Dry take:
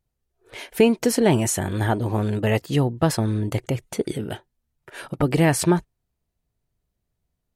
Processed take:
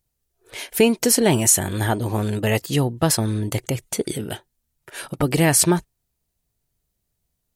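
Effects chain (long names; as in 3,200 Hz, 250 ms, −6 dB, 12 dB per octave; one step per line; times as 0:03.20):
high-shelf EQ 4,000 Hz +12 dB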